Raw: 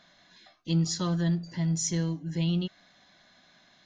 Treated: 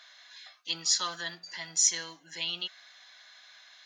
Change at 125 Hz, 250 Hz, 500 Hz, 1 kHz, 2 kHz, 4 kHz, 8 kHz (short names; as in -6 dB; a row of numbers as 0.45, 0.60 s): -28.0, -24.0, -10.0, +2.5, +6.5, +7.5, +7.5 dB